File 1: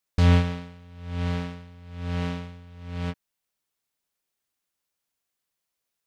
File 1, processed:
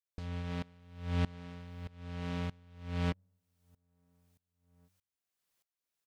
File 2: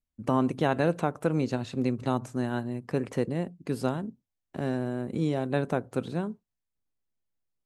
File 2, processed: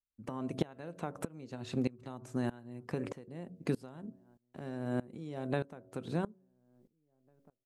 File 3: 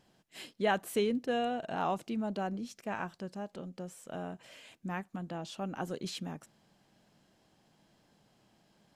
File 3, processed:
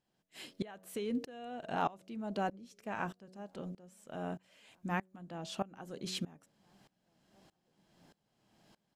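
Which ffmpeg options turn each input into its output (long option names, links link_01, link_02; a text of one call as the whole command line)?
ffmpeg -i in.wav -filter_complex "[0:a]bandreject=frequency=93.29:width_type=h:width=4,bandreject=frequency=186.58:width_type=h:width=4,bandreject=frequency=279.87:width_type=h:width=4,bandreject=frequency=373.16:width_type=h:width=4,bandreject=frequency=466.45:width_type=h:width=4,bandreject=frequency=559.74:width_type=h:width=4,bandreject=frequency=653.03:width_type=h:width=4,acompressor=threshold=-31dB:ratio=12,asplit=2[link_01][link_02];[link_02]adelay=1749,volume=-30dB,highshelf=frequency=4000:gain=-39.4[link_03];[link_01][link_03]amix=inputs=2:normalize=0,aeval=exprs='val(0)*pow(10,-23*if(lt(mod(-1.6*n/s,1),2*abs(-1.6)/1000),1-mod(-1.6*n/s,1)/(2*abs(-1.6)/1000),(mod(-1.6*n/s,1)-2*abs(-1.6)/1000)/(1-2*abs(-1.6)/1000))/20)':channel_layout=same,volume=5.5dB" out.wav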